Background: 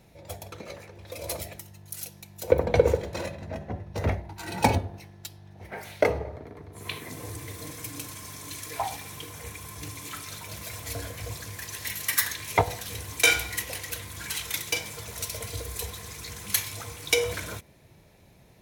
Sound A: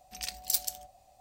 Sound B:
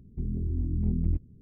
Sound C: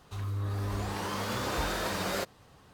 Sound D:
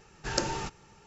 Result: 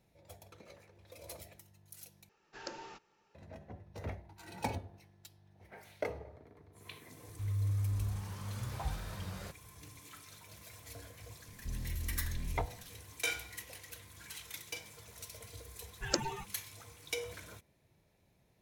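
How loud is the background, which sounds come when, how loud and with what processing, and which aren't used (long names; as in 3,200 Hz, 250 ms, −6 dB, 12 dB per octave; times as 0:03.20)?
background −15 dB
0:02.29: overwrite with D −13.5 dB + three-way crossover with the lows and the highs turned down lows −15 dB, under 240 Hz, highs −22 dB, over 6,100 Hz
0:07.27: mix in C −16.5 dB + low shelf with overshoot 190 Hz +14 dB, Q 1.5
0:11.48: mix in B −5.5 dB + slew-rate limiting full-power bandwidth 2.1 Hz
0:15.76: mix in D + spectral dynamics exaggerated over time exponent 3
not used: A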